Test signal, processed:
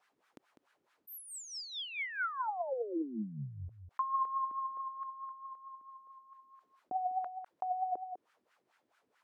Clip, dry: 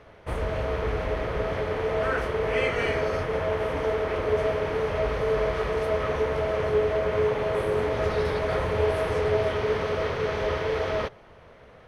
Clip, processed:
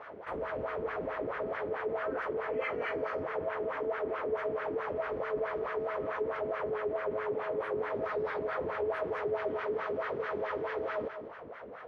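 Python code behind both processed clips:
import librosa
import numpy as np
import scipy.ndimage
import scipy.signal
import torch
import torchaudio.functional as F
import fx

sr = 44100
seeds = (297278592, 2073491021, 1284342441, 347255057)

p1 = fx.wah_lfo(x, sr, hz=4.6, low_hz=280.0, high_hz=1600.0, q=2.4)
p2 = p1 + fx.echo_single(p1, sr, ms=200, db=-17.5, dry=0)
p3 = fx.env_flatten(p2, sr, amount_pct=50)
y = p3 * 10.0 ** (-6.0 / 20.0)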